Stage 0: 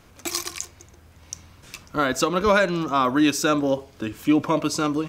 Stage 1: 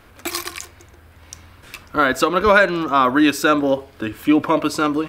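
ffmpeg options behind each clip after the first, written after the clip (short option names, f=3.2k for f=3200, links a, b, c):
-af "equalizer=f=160:t=o:w=0.67:g=-7,equalizer=f=1.6k:t=o:w=0.67:g=4,equalizer=f=6.3k:t=o:w=0.67:g=-9,volume=4.5dB"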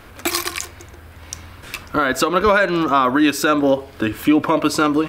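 -filter_complex "[0:a]asplit=2[a][b];[b]acompressor=threshold=-23dB:ratio=6,volume=0.5dB[c];[a][c]amix=inputs=2:normalize=0,alimiter=limit=-5.5dB:level=0:latency=1:release=164"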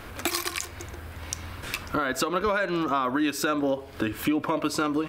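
-af "acompressor=threshold=-29dB:ratio=2.5,volume=1dB"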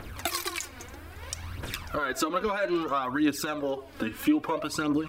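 -af "aphaser=in_gain=1:out_gain=1:delay=4.3:decay=0.59:speed=0.61:type=triangular,volume=-4.5dB"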